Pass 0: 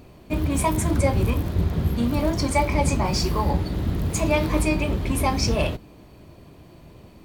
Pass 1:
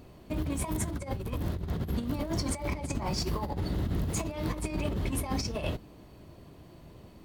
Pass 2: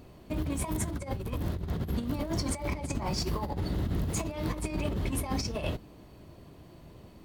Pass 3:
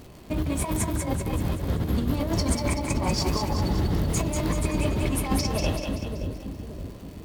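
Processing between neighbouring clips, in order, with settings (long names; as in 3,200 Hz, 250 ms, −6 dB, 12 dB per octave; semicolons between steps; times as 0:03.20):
notch filter 2,400 Hz, Q 18; compressor whose output falls as the input rises −24 dBFS, ratio −0.5; level −7 dB
no processing that can be heard
echo with a time of its own for lows and highs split 500 Hz, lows 571 ms, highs 191 ms, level −4.5 dB; surface crackle 290 per second −45 dBFS; level +5 dB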